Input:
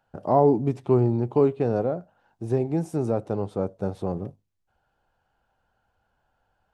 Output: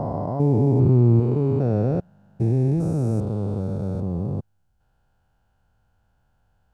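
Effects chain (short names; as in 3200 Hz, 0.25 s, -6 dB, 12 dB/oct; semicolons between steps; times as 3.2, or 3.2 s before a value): stepped spectrum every 0.4 s; tone controls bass +12 dB, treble +6 dB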